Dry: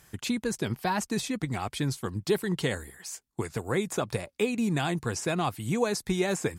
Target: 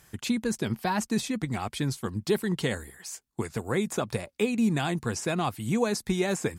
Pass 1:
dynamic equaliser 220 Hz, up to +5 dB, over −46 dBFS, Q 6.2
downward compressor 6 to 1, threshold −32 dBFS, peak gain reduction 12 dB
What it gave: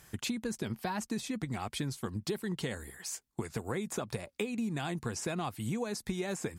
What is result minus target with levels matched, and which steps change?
downward compressor: peak gain reduction +12 dB
remove: downward compressor 6 to 1, threshold −32 dBFS, peak gain reduction 12 dB

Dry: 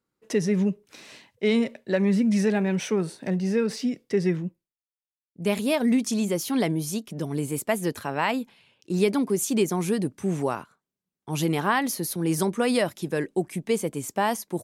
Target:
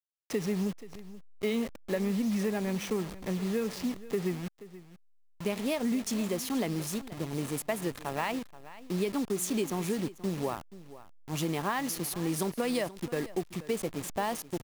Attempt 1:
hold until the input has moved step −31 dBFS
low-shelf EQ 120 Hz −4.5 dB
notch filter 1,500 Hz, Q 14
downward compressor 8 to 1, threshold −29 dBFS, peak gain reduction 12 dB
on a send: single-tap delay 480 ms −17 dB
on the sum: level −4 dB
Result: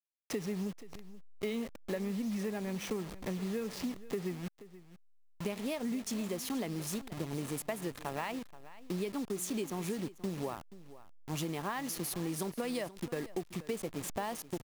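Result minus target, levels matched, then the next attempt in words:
downward compressor: peak gain reduction +6 dB
hold until the input has moved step −31 dBFS
low-shelf EQ 120 Hz −4.5 dB
notch filter 1,500 Hz, Q 14
downward compressor 8 to 1, threshold −22 dBFS, peak gain reduction 6 dB
on a send: single-tap delay 480 ms −17 dB
on the sum: level −4 dB

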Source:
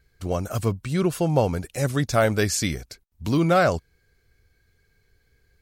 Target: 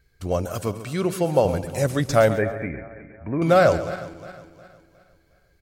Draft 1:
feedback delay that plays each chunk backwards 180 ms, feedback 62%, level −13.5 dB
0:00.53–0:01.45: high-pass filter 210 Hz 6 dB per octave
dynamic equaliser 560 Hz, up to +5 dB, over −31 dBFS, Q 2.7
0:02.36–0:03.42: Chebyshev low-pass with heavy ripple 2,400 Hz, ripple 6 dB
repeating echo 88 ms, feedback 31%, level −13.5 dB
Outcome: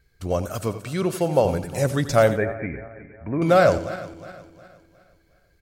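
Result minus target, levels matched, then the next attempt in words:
echo 46 ms early
feedback delay that plays each chunk backwards 180 ms, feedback 62%, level −13.5 dB
0:00.53–0:01.45: high-pass filter 210 Hz 6 dB per octave
dynamic equaliser 560 Hz, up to +5 dB, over −31 dBFS, Q 2.7
0:02.36–0:03.42: Chebyshev low-pass with heavy ripple 2,400 Hz, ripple 6 dB
repeating echo 134 ms, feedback 31%, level −13.5 dB

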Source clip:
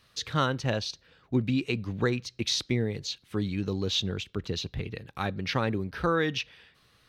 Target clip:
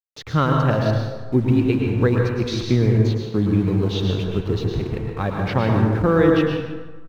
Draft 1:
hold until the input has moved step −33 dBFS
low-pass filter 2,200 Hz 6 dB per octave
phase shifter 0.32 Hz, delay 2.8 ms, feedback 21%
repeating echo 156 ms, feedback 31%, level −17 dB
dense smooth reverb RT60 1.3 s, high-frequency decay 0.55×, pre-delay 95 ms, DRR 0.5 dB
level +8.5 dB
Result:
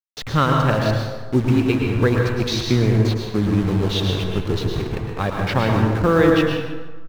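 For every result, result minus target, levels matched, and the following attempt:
hold until the input has moved: distortion +7 dB; 2,000 Hz band +3.0 dB
hold until the input has moved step −39.5 dBFS
low-pass filter 2,200 Hz 6 dB per octave
phase shifter 0.32 Hz, delay 2.8 ms, feedback 21%
repeating echo 156 ms, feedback 31%, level −17 dB
dense smooth reverb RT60 1.3 s, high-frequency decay 0.55×, pre-delay 95 ms, DRR 0.5 dB
level +8.5 dB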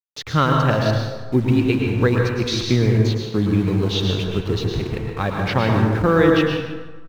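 2,000 Hz band +3.5 dB
hold until the input has moved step −39.5 dBFS
low-pass filter 970 Hz 6 dB per octave
phase shifter 0.32 Hz, delay 2.8 ms, feedback 21%
repeating echo 156 ms, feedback 31%, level −17 dB
dense smooth reverb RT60 1.3 s, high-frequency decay 0.55×, pre-delay 95 ms, DRR 0.5 dB
level +8.5 dB

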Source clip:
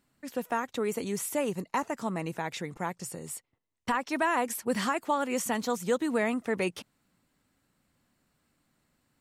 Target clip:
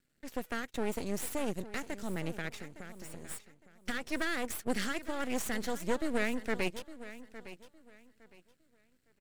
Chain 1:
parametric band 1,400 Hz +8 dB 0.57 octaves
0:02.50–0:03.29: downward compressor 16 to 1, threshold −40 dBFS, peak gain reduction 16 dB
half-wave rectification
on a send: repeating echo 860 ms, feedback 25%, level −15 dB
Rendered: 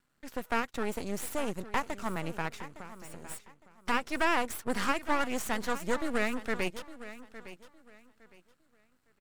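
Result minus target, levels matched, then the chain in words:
1,000 Hz band +5.0 dB
Butterworth band-reject 990 Hz, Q 0.91
parametric band 1,400 Hz +8 dB 0.57 octaves
0:02.50–0:03.29: downward compressor 16 to 1, threshold −40 dBFS, peak gain reduction 10 dB
half-wave rectification
on a send: repeating echo 860 ms, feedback 25%, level −15 dB

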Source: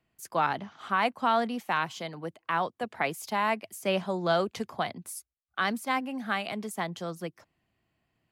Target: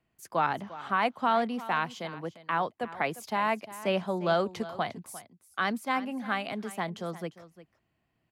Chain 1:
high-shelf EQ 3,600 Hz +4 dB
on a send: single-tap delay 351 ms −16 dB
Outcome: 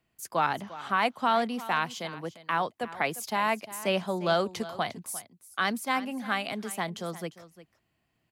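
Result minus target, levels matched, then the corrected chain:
8,000 Hz band +7.5 dB
high-shelf EQ 3,600 Hz −5.5 dB
on a send: single-tap delay 351 ms −16 dB

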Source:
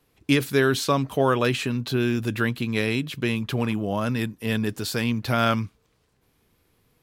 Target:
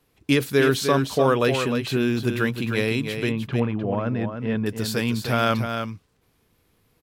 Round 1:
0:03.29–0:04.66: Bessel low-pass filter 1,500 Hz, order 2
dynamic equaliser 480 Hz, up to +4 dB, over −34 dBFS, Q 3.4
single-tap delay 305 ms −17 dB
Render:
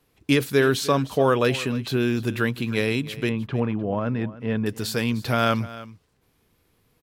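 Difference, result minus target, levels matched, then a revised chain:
echo-to-direct −10 dB
0:03.29–0:04.66: Bessel low-pass filter 1,500 Hz, order 2
dynamic equaliser 480 Hz, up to +4 dB, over −34 dBFS, Q 3.4
single-tap delay 305 ms −7 dB

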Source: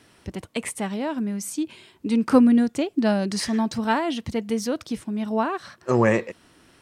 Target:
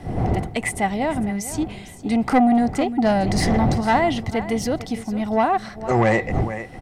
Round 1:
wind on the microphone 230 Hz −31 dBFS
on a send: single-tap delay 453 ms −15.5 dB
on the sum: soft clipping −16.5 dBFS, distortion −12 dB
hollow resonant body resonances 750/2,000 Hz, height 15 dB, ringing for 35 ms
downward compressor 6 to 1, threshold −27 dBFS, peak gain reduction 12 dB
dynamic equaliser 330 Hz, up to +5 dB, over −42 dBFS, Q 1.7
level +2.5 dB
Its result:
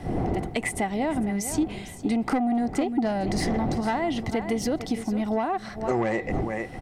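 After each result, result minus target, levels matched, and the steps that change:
downward compressor: peak gain reduction +12 dB; 125 Hz band −2.5 dB
remove: downward compressor 6 to 1, threshold −27 dBFS, peak gain reduction 12 dB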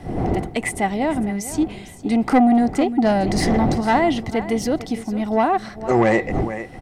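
125 Hz band −3.5 dB
change: dynamic equaliser 100 Hz, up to +5 dB, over −42 dBFS, Q 1.7

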